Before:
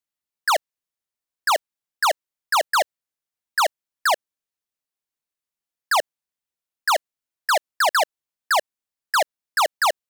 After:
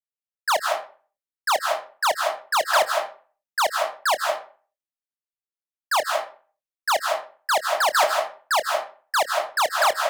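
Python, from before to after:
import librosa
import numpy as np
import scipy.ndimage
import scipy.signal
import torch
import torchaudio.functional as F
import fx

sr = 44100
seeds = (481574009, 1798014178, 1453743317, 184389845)

y = fx.rev_freeverb(x, sr, rt60_s=0.45, hf_ratio=0.7, predelay_ms=115, drr_db=2.5)
y = fx.chorus_voices(y, sr, voices=6, hz=0.72, base_ms=26, depth_ms=4.3, mix_pct=20)
y = fx.band_widen(y, sr, depth_pct=40)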